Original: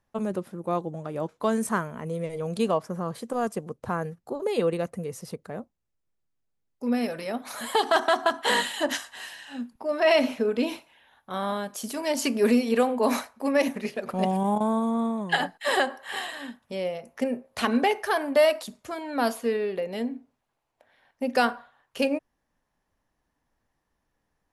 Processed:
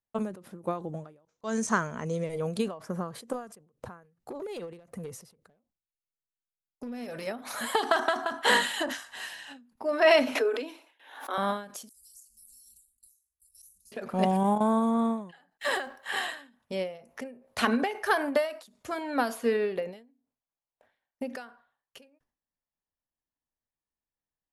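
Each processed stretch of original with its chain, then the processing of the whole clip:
0:01.25–0:02.24: low-pass with resonance 6,300 Hz, resonance Q 4.5 + volume swells 218 ms
0:04.03–0:07.27: downward compressor 20 to 1, threshold −33 dBFS + hard clipping −32.5 dBFS
0:10.35–0:11.38: Chebyshev high-pass filter 260 Hz, order 8 + background raised ahead of every attack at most 79 dB per second
0:11.89–0:13.92: inverse Chebyshev band-stop filter 260–2,100 Hz, stop band 70 dB + downward compressor 4 to 1, threshold −51 dBFS
0:15.50–0:16.06: mu-law and A-law mismatch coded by A + downward compressor 2 to 1, threshold −27 dBFS
whole clip: noise gate with hold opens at −48 dBFS; dynamic equaliser 1,500 Hz, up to +4 dB, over −43 dBFS, Q 2.1; every ending faded ahead of time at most 120 dB per second

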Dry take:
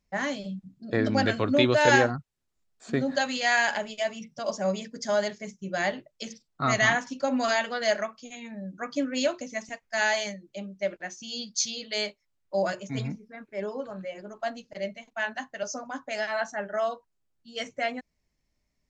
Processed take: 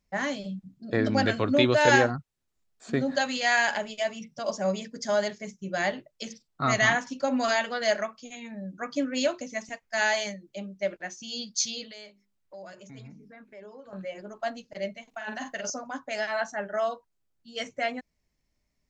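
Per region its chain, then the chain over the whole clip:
0:11.91–0:13.93: mains-hum notches 50/100/150/200/250/300/350/400 Hz + downward compressor 3 to 1, threshold −47 dBFS
0:15.09–0:15.70: high-shelf EQ 4,100 Hz +4 dB + compressor whose output falls as the input rises −35 dBFS + double-tracking delay 46 ms −6 dB
whole clip: no processing

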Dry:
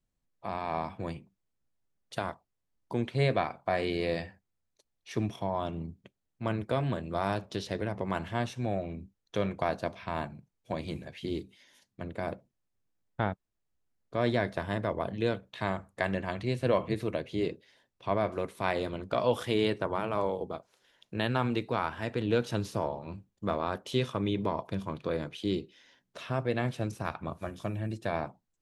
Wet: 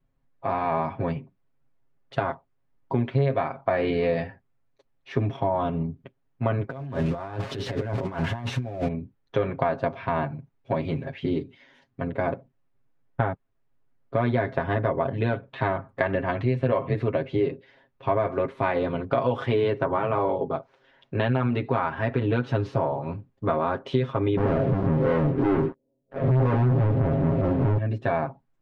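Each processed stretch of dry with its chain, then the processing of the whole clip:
0:06.70–0:08.88: spike at every zero crossing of −30 dBFS + low-shelf EQ 110 Hz +5.5 dB + compressor whose output falls as the input rises −36 dBFS, ratio −0.5
0:24.37–0:27.78: spectrum smeared in time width 103 ms + Butterworth low-pass 590 Hz + leveller curve on the samples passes 5
whole clip: low-pass filter 2,000 Hz 12 dB per octave; comb filter 7.4 ms, depth 88%; downward compressor 4 to 1, threshold −28 dBFS; level +8 dB

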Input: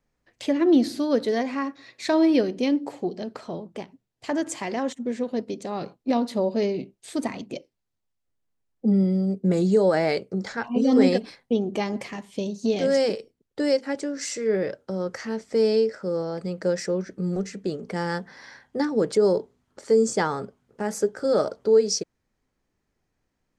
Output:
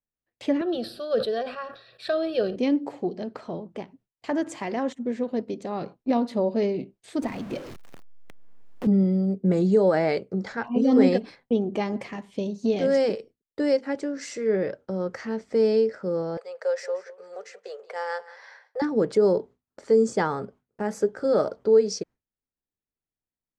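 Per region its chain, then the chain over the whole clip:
0:00.61–0:02.56: high-shelf EQ 4,700 Hz +7 dB + phaser with its sweep stopped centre 1,400 Hz, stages 8 + level that may fall only so fast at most 86 dB per second
0:07.22–0:08.87: converter with a step at zero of −34.5 dBFS + multiband upward and downward compressor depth 70%
0:16.37–0:18.82: elliptic high-pass filter 470 Hz + single-tap delay 179 ms −18 dB
whole clip: noise gate with hold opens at −42 dBFS; high-shelf EQ 4,500 Hz −12 dB

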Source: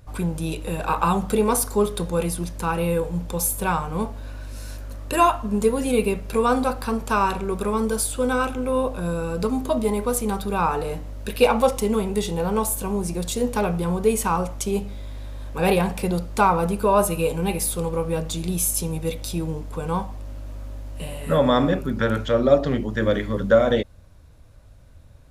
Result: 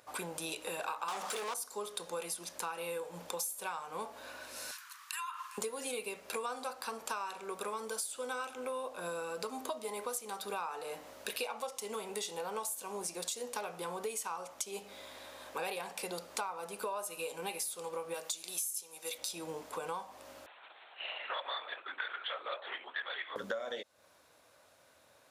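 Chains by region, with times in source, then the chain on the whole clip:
0:01.08–0:01.54: high-shelf EQ 5,000 Hz +10.5 dB + mid-hump overdrive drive 31 dB, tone 2,300 Hz, clips at −8 dBFS
0:04.71–0:05.58: Butterworth high-pass 1,000 Hz 72 dB per octave + downward compressor, threshold −35 dBFS
0:18.14–0:19.18: high-pass filter 520 Hz 6 dB per octave + high-shelf EQ 6,800 Hz +8 dB
0:20.46–0:23.36: comb filter 4.8 ms, depth 43% + linear-prediction vocoder at 8 kHz whisper + high-pass filter 1,200 Hz
whole clip: dynamic equaliser 6,100 Hz, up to +7 dB, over −43 dBFS, Q 0.72; high-pass filter 580 Hz 12 dB per octave; downward compressor 10 to 1, threshold −36 dBFS

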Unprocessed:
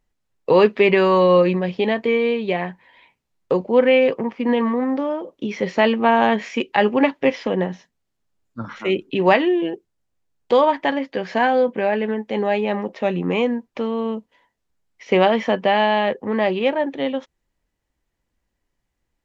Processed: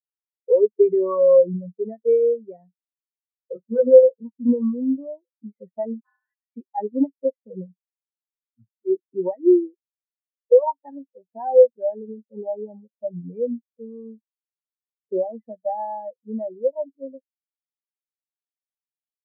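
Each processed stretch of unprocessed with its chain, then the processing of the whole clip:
0:03.53–0:04.03: each half-wave held at its own peak + micro pitch shift up and down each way 19 cents
0:06.00–0:06.41: high-pass filter 1,300 Hz 24 dB per octave + ring modulation 130 Hz
whole clip: octave-band graphic EQ 125/250/500/1,000/2,000 Hz +11/+4/+5/+7/+5 dB; downward compressor 5 to 1, threshold −8 dBFS; every bin expanded away from the loudest bin 4 to 1; level −4.5 dB

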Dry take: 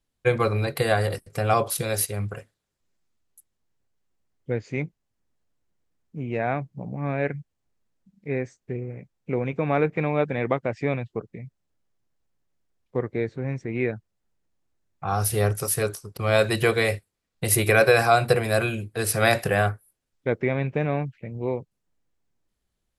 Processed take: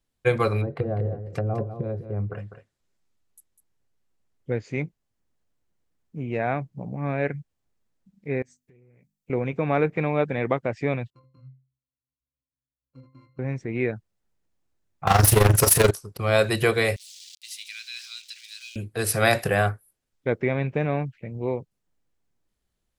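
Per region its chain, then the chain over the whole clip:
0:00.61–0:04.52: treble cut that deepens with the level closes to 380 Hz, closed at −22 dBFS + single-tap delay 200 ms −10 dB
0:08.42–0:09.30: mains-hum notches 50/100/150/200/250 Hz + downward compressor 8 to 1, threshold −39 dBFS + first-order pre-emphasis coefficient 0.8
0:11.10–0:13.39: samples sorted by size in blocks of 32 samples + downward compressor 4 to 1, threshold −31 dBFS + resonances in every octave C, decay 0.35 s
0:15.07–0:15.91: leveller curve on the samples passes 5 + amplitude modulation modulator 23 Hz, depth 60%
0:16.96–0:18.76: spike at every zero crossing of −21 dBFS + inverse Chebyshev high-pass filter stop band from 570 Hz, stop band 80 dB + high-frequency loss of the air 150 metres
whole clip: no processing

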